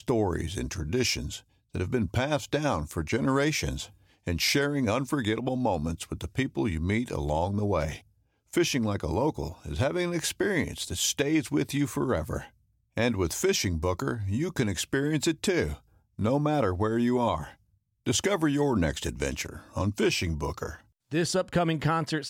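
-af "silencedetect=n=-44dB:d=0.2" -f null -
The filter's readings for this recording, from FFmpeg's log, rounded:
silence_start: 1.40
silence_end: 1.74 | silence_duration: 0.34
silence_start: 3.87
silence_end: 4.27 | silence_duration: 0.40
silence_start: 7.99
silence_end: 8.53 | silence_duration: 0.54
silence_start: 12.47
silence_end: 12.97 | silence_duration: 0.50
silence_start: 15.77
silence_end: 16.19 | silence_duration: 0.42
silence_start: 17.54
silence_end: 18.06 | silence_duration: 0.53
silence_start: 20.80
silence_end: 21.11 | silence_duration: 0.31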